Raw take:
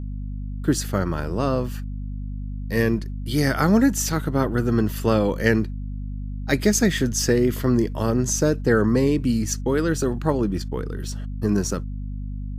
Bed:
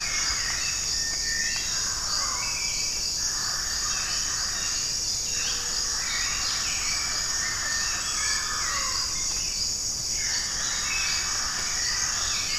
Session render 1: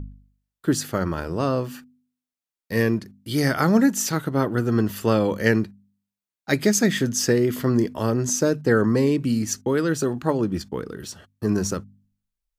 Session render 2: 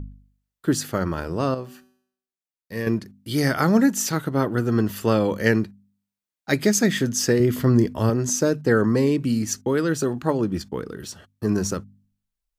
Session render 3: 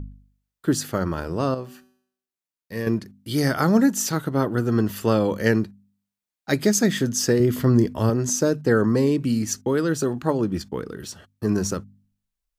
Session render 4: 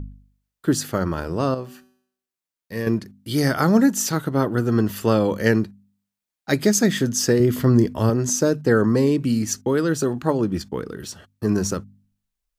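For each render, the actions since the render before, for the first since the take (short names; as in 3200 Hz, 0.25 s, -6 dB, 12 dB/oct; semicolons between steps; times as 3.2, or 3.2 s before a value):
de-hum 50 Hz, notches 5
1.54–2.87 resonator 190 Hz, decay 0.69 s; 7.4–8.1 low shelf 120 Hz +11.5 dB
dynamic EQ 2200 Hz, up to -4 dB, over -39 dBFS, Q 1.9
gain +1.5 dB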